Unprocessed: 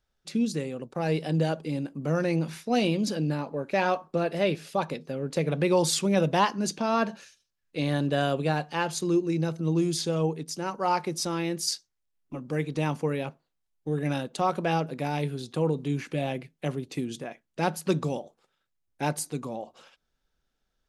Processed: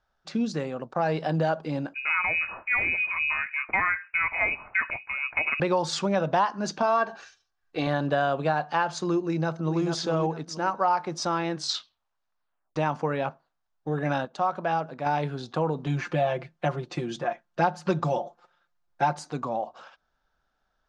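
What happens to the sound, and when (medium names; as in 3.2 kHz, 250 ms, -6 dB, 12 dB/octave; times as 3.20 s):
1.94–5.60 s: frequency inversion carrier 2.7 kHz
6.82–7.87 s: comb 2.6 ms, depth 55%
9.21–9.82 s: echo throw 440 ms, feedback 30%, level -6.5 dB
11.50 s: tape stop 1.26 s
14.25–15.06 s: gain -6 dB
15.86–19.19 s: comb 5.7 ms, depth 86%
whole clip: low-pass 6.3 kHz 24 dB/octave; high-order bell 1 kHz +10 dB; compression 4:1, threshold -21 dBFS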